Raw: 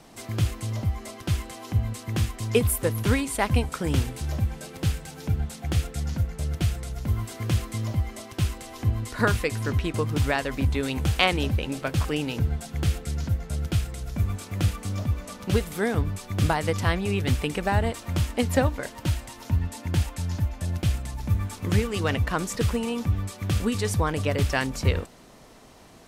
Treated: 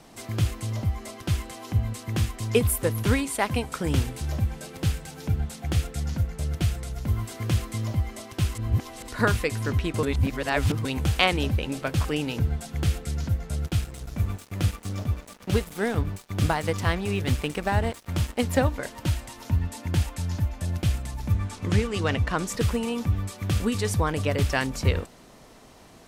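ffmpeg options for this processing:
-filter_complex "[0:a]asettb=1/sr,asplit=3[s0][s1][s2];[s0]atrim=end=3.264[s3];[s1]atrim=start=3.26:end=3.7,asetpts=PTS-STARTPTS,afade=t=in:d=0.004:c=qsin,afade=t=out:st=0.436:d=0.004:c=qsin,highpass=f=180:p=1[s4];[s2]atrim=start=3.696[s5];[s3][s4]acrossfade=d=0.004:c1=hsin:c2=qsin[s6];[s6][s5]acrossfade=d=0.004:c1=qsin:c2=hsin,asettb=1/sr,asplit=3[s7][s8][s9];[s7]atrim=end=13.654[s10];[s8]atrim=start=13.65:end=18.6,asetpts=PTS-STARTPTS,afade=t=in:d=0.004:c=qsin,afade=t=out:st=4.946:d=0.004:c=qsin,aeval=exprs='sgn(val(0))*max(abs(val(0))-0.01,0)':c=same[s11];[s9]atrim=start=18.596[s12];[s10][s11]acrossfade=d=0.004:c1=hsin:c2=qsin[s13];[s13][s12]acrossfade=d=0.004:c1=qsin:c2=hsin,asettb=1/sr,asplit=3[s14][s15][s16];[s14]atrim=end=21.324[s17];[s15]atrim=start=21.32:end=22.48,asetpts=PTS-STARTPTS,afade=t=in:d=0.004:c=qsin,afade=t=out:st=1.156:d=0.004:c=qsin,lowpass=8800[s18];[s16]atrim=start=22.476[s19];[s17][s18]acrossfade=d=0.004:c1=hsin:c2=qsin[s20];[s20][s19]acrossfade=d=0.004:c1=qsin:c2=hsin,asplit=5[s21][s22][s23][s24][s25];[s21]atrim=end=8.552[s26];[s22]atrim=start=8.548:end=9.082,asetpts=PTS-STARTPTS,areverse[s27];[s23]atrim=start=9.078:end=10.032[s28];[s24]atrim=start=10.028:end=10.852,asetpts=PTS-STARTPTS,areverse[s29];[s25]atrim=start=10.848[s30];[s26][s27]acrossfade=d=0.004:c1=hsin:c2=hsin[s31];[s31][s28]acrossfade=d=0.004:c1=hsin:c2=hsin[s32];[s32][s29]acrossfade=d=0.004:c1=hsin:c2=hsin[s33];[s33][s30]acrossfade=d=0.004:c1=hsin:c2=hsin"

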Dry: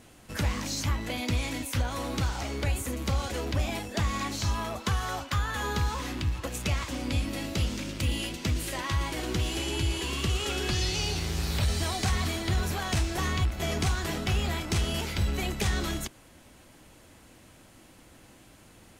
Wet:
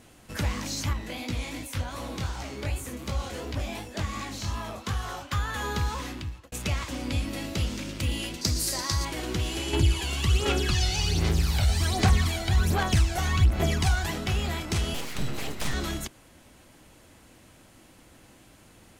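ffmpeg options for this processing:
-filter_complex "[0:a]asettb=1/sr,asplit=3[s0][s1][s2];[s0]atrim=end=0.934[s3];[s1]atrim=start=0.93:end=5.32,asetpts=PTS-STARTPTS,afade=t=in:d=0.004:c=qsin,afade=t=out:st=4.386:d=0.004:c=qsin,flanger=delay=16.5:depth=7.4:speed=2.7[s4];[s2]atrim=start=5.316[s5];[s3][s4]acrossfade=d=0.004:c1=hsin:c2=qsin[s6];[s6][s5]acrossfade=d=0.004:c1=qsin:c2=hsin,asettb=1/sr,asplit=3[s7][s8][s9];[s7]atrim=end=8.414[s10];[s8]atrim=start=8.41:end=9.05,asetpts=PTS-STARTPTS,afade=t=in:d=0.004:c=qsin,afade=t=out:st=0.636:d=0.004:c=qsin,highshelf=f=3800:t=q:w=3:g=7.5[s11];[s9]atrim=start=9.046[s12];[s10][s11]acrossfade=d=0.004:c1=hsin:c2=qsin[s13];[s13][s12]acrossfade=d=0.004:c1=qsin:c2=hsin,asettb=1/sr,asplit=3[s14][s15][s16];[s14]atrim=end=9.734[s17];[s15]atrim=start=9.73:end=14.11,asetpts=PTS-STARTPTS,afade=t=in:d=0.004:c=qsin,afade=t=out:st=4.376:d=0.004:c=qsin,aphaser=in_gain=1:out_gain=1:delay=1.4:decay=0.59:speed=1.3:type=sinusoidal[s18];[s16]atrim=start=14.106[s19];[s17][s18]acrossfade=d=0.004:c1=hsin:c2=qsin[s20];[s20][s19]acrossfade=d=0.004:c1=qsin:c2=hsin,asettb=1/sr,asplit=3[s21][s22][s23];[s21]atrim=end=14.944[s24];[s22]atrim=start=14.94:end=15.74,asetpts=PTS-STARTPTS,afade=t=in:d=0.004:c=qsin,afade=t=out:st=0.796:d=0.004:c=qsin,aeval=exprs='abs(val(0))':c=same[s25];[s23]atrim=start=15.736[s26];[s24][s25]acrossfade=d=0.004:c1=hsin:c2=qsin[s27];[s27][s26]acrossfade=d=0.004:c1=qsin:c2=hsin,asplit=2[s28][s29];[s28]atrim=end=6.52,asetpts=PTS-STARTPTS,afade=t=out:st=6:d=0.52[s30];[s29]atrim=start=6.52,asetpts=PTS-STARTPTS,afade=t=in:d=0.004:c=hsin[s31];[s30][s31]concat=n=2:v=0:a=1"

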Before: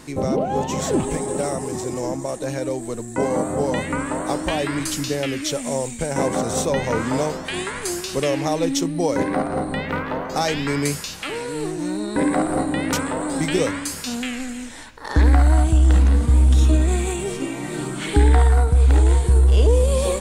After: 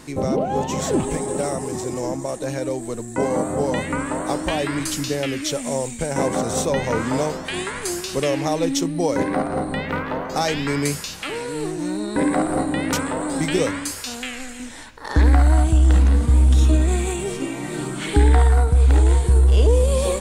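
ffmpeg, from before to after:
-filter_complex "[0:a]asettb=1/sr,asplit=3[s0][s1][s2];[s0]atrim=end=13.914[s3];[s1]atrim=start=13.91:end=14.6,asetpts=PTS-STARTPTS,afade=t=in:d=0.004:c=qsin,afade=t=out:st=0.686:d=0.004:c=qsin,equalizer=f=190:w=1.5:g=-14[s4];[s2]atrim=start=14.596[s5];[s3][s4]acrossfade=d=0.004:c1=hsin:c2=qsin[s6];[s6][s5]acrossfade=d=0.004:c1=qsin:c2=hsin"

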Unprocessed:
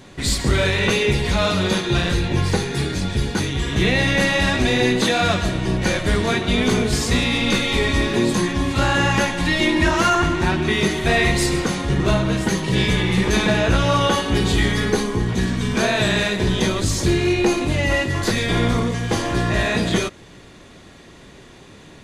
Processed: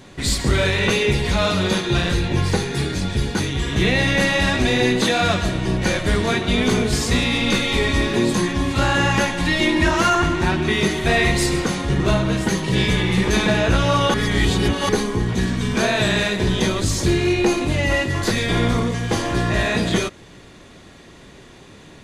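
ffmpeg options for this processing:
-filter_complex "[0:a]asplit=3[s0][s1][s2];[s0]atrim=end=14.142[s3];[s1]atrim=start=14.138:end=14.892,asetpts=PTS-STARTPTS,areverse[s4];[s2]atrim=start=14.888[s5];[s3][s4]acrossfade=d=0.004:c1=hsin:c2=hsin[s6];[s6][s5]acrossfade=d=0.004:c1=hsin:c2=hsin"

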